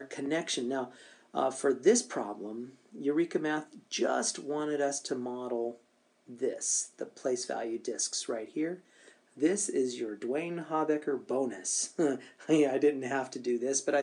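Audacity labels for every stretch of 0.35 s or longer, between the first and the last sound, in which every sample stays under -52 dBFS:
5.770000	6.280000	silence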